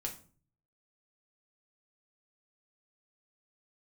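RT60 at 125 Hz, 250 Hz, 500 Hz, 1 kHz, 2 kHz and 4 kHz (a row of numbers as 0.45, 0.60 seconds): 0.85, 0.60, 0.45, 0.40, 0.30, 0.30 seconds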